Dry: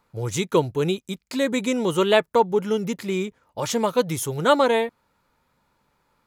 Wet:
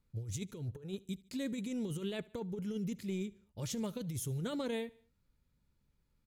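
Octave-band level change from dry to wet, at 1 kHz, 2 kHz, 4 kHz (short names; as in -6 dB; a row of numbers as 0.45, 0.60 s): -28.5, -21.5, -18.0 dB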